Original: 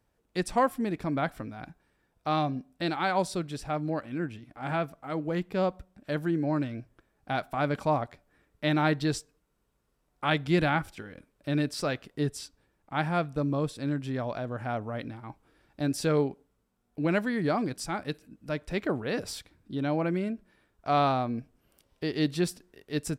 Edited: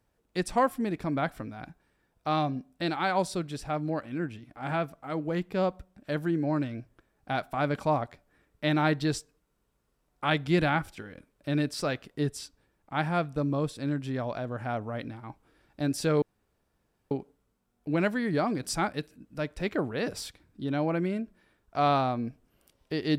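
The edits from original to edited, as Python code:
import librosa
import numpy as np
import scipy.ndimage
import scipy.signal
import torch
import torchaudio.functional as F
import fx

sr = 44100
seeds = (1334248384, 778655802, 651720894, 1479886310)

y = fx.edit(x, sr, fx.insert_room_tone(at_s=16.22, length_s=0.89),
    fx.clip_gain(start_s=17.74, length_s=0.25, db=4.5), tone=tone)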